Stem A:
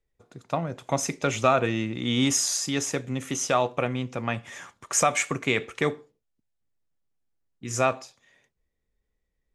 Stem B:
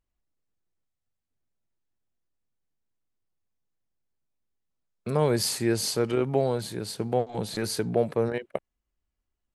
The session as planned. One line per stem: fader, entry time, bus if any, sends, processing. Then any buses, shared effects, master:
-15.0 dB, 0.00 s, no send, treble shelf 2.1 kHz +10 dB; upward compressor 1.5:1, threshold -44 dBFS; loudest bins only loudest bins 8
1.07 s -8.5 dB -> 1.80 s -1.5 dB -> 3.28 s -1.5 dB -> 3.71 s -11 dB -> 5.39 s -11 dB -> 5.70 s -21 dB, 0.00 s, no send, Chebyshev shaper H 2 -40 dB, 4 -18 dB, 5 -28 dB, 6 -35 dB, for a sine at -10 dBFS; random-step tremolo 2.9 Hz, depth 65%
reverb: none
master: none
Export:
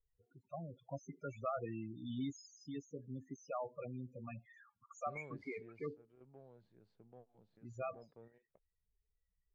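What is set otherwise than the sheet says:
stem B -8.5 dB -> -20.5 dB; master: extra tape spacing loss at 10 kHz 36 dB

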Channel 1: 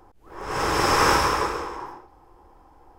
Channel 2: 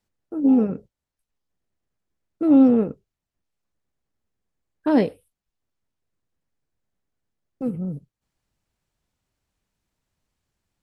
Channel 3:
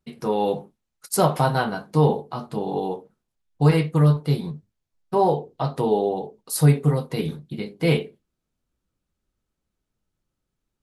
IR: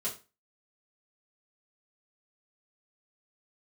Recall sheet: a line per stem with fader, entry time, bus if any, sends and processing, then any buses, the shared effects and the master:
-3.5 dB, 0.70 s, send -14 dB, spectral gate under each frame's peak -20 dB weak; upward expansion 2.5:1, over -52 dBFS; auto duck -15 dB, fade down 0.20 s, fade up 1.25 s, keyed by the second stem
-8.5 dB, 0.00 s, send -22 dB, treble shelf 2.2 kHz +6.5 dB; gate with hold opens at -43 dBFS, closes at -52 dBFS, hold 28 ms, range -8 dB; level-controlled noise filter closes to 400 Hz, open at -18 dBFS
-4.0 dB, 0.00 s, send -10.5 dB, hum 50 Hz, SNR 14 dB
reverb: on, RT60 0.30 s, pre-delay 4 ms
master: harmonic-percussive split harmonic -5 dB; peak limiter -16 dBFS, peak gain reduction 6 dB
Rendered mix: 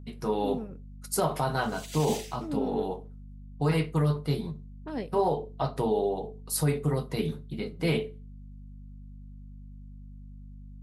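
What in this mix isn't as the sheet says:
stem 1: entry 0.70 s -> 1.00 s; stem 2 -8.5 dB -> -15.0 dB

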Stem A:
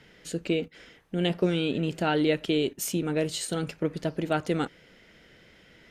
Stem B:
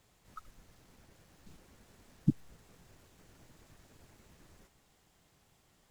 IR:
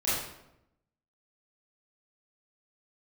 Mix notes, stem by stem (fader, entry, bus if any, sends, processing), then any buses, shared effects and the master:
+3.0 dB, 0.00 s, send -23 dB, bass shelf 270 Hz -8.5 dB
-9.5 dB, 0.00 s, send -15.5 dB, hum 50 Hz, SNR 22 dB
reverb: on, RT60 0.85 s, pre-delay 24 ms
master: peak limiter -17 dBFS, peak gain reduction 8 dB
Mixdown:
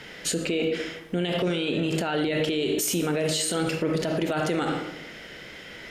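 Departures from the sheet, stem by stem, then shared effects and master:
stem A +3.0 dB -> +13.0 dB; reverb return +7.5 dB

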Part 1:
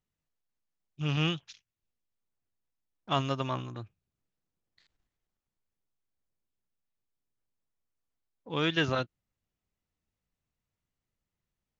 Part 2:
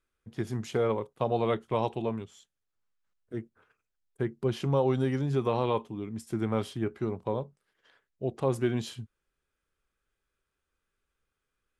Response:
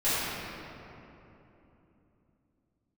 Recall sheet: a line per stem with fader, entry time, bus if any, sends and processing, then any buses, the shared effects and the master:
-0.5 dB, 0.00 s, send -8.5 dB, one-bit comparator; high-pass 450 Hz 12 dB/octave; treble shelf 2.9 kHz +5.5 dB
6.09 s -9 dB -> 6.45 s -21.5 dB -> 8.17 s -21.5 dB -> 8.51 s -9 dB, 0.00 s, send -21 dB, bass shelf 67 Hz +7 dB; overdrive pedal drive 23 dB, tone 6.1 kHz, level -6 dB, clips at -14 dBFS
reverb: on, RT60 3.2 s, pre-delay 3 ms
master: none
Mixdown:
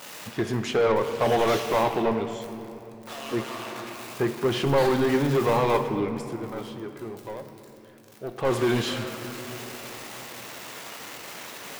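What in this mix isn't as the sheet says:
stem 2 -9.0 dB -> -0.5 dB; master: extra treble shelf 3.5 kHz -8 dB

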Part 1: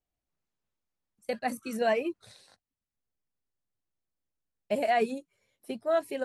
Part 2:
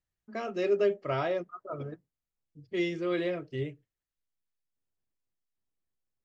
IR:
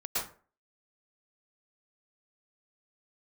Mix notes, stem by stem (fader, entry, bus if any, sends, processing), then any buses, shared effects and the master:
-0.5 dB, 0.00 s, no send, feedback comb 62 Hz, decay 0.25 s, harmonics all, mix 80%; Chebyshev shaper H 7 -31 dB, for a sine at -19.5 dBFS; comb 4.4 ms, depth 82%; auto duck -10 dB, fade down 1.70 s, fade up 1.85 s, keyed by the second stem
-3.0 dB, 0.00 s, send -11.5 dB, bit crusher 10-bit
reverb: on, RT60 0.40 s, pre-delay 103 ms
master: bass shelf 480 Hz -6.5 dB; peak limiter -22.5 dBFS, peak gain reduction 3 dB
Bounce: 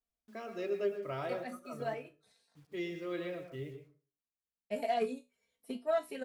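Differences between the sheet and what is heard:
stem 2 -3.0 dB -> -10.0 dB; master: missing bass shelf 480 Hz -6.5 dB

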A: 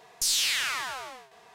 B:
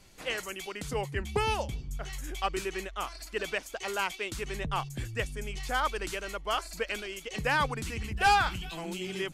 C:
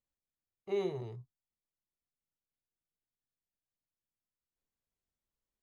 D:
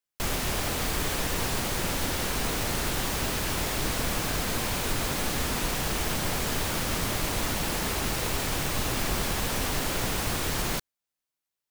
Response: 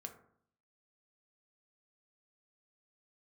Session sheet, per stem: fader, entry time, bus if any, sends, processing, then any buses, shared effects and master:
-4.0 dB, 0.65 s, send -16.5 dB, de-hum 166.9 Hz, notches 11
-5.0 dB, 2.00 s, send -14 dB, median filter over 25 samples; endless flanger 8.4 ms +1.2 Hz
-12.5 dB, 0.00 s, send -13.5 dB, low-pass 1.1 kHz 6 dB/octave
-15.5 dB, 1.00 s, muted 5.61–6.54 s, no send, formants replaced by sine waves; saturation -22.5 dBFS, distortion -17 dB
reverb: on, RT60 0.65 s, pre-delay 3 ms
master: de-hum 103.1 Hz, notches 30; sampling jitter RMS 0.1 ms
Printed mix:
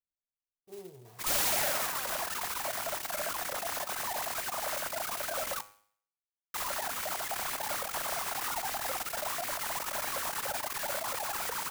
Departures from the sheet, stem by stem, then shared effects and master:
stem A: entry 0.65 s -> 1.05 s; stem B: muted; stem D -15.5 dB -> -5.0 dB

